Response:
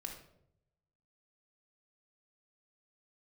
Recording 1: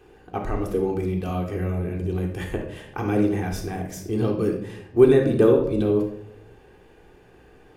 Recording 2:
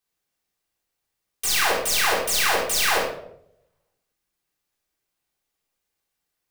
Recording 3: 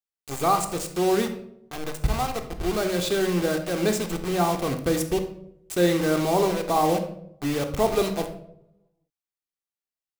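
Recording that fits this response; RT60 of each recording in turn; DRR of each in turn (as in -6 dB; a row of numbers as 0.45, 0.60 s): 1; 0.75, 0.75, 0.75 s; 0.5, -6.5, 5.0 dB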